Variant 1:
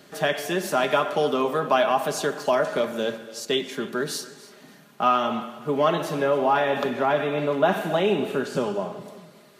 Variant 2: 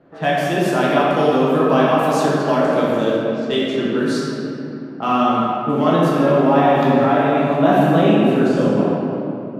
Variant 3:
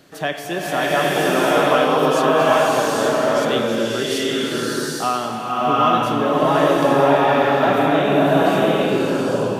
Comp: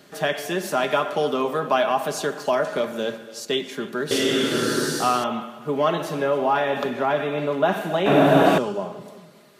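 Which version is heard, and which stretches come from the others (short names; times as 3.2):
1
4.11–5.24 from 3
8.06–8.58 from 3
not used: 2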